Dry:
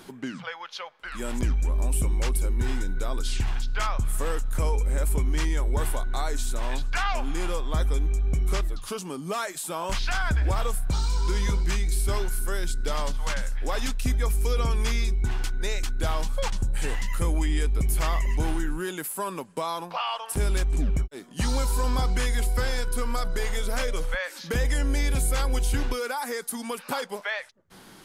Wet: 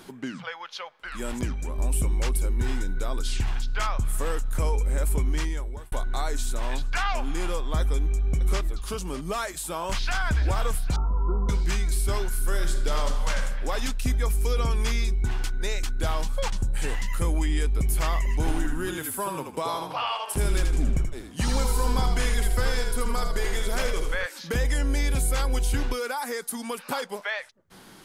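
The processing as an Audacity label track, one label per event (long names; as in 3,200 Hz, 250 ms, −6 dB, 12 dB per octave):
1.330000	1.790000	high-pass filter 72 Hz
5.300000	5.920000	fade out
7.800000	8.910000	delay throw 600 ms, feedback 25%, level −12.5 dB
9.910000	10.360000	delay throw 400 ms, feedback 75%, level −13.5 dB
10.960000	11.490000	linear-phase brick-wall low-pass 1,400 Hz
12.350000	13.420000	thrown reverb, RT60 1.2 s, DRR 5 dB
18.350000	24.260000	echo with shifted repeats 80 ms, feedback 35%, per repeat −39 Hz, level −5.5 dB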